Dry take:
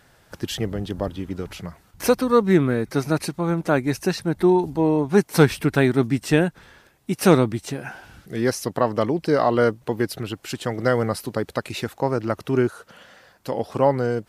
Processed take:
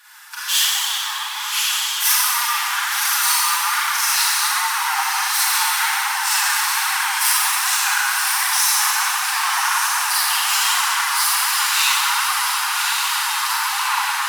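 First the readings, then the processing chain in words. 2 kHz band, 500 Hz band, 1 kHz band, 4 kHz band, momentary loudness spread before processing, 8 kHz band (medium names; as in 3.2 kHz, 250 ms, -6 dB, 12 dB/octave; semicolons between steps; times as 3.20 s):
+12.0 dB, under -30 dB, +8.0 dB, +17.5 dB, 13 LU, +20.0 dB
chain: in parallel at +2.5 dB: compression, threshold -30 dBFS, peak gain reduction 19.5 dB; on the sum: waveshaping leveller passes 1; one-sided clip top -22.5 dBFS; on a send: echo that smears into a reverb 1114 ms, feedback 66%, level -4 dB; on the sum: peak limiter -11 dBFS, peak gain reduction 8 dB; valve stage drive 21 dB, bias 0.5; steep high-pass 840 Hz 96 dB/octave; treble shelf 6.7 kHz +8 dB; Schroeder reverb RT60 2.2 s, combs from 31 ms, DRR -10 dB; flange 1.3 Hz, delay 2.5 ms, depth 5.1 ms, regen +44%; trim +5.5 dB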